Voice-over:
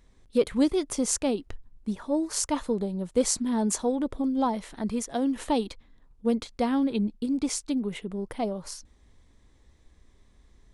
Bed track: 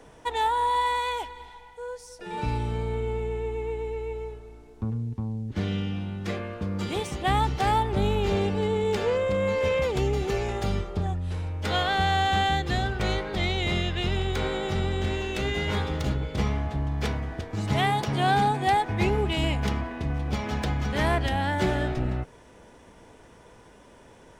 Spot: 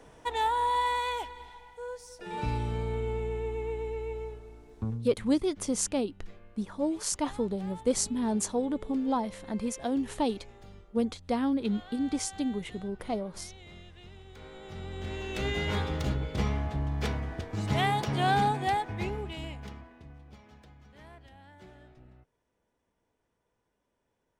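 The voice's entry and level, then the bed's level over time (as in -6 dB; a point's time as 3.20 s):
4.70 s, -3.0 dB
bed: 4.90 s -3 dB
5.44 s -23.5 dB
14.24 s -23.5 dB
15.46 s -3 dB
18.47 s -3 dB
20.69 s -27.5 dB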